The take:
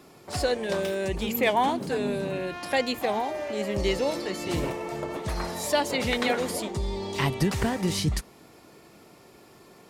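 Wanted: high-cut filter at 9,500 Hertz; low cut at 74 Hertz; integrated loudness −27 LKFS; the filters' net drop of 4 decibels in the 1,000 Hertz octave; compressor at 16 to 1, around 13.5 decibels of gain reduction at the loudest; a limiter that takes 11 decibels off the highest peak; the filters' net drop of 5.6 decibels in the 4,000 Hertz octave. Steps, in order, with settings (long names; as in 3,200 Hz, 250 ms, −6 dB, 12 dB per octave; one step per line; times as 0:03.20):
high-pass filter 74 Hz
low-pass filter 9,500 Hz
parametric band 1,000 Hz −5 dB
parametric band 4,000 Hz −7 dB
downward compressor 16 to 1, threshold −34 dBFS
level +14.5 dB
brickwall limiter −18.5 dBFS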